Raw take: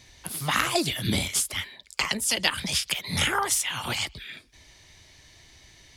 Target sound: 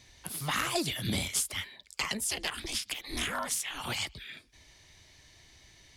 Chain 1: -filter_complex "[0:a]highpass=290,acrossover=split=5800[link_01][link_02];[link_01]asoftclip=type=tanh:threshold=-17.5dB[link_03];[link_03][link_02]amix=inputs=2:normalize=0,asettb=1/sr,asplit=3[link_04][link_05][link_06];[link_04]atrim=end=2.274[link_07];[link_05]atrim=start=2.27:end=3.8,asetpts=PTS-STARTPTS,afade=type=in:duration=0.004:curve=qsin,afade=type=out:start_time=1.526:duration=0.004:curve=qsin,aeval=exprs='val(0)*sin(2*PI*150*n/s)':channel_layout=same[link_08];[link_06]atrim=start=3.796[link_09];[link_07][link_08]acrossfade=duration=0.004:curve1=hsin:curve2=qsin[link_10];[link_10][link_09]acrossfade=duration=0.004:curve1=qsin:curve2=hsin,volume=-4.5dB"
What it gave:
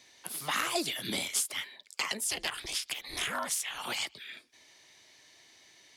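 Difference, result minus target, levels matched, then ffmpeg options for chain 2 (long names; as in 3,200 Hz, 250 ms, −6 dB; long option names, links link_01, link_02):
250 Hz band −4.0 dB
-filter_complex "[0:a]acrossover=split=5800[link_01][link_02];[link_01]asoftclip=type=tanh:threshold=-17.5dB[link_03];[link_03][link_02]amix=inputs=2:normalize=0,asettb=1/sr,asplit=3[link_04][link_05][link_06];[link_04]atrim=end=2.274[link_07];[link_05]atrim=start=2.27:end=3.8,asetpts=PTS-STARTPTS,afade=type=in:duration=0.004:curve=qsin,afade=type=out:start_time=1.526:duration=0.004:curve=qsin,aeval=exprs='val(0)*sin(2*PI*150*n/s)':channel_layout=same[link_08];[link_06]atrim=start=3.796[link_09];[link_07][link_08]acrossfade=duration=0.004:curve1=hsin:curve2=qsin[link_10];[link_10][link_09]acrossfade=duration=0.004:curve1=qsin:curve2=hsin,volume=-4.5dB"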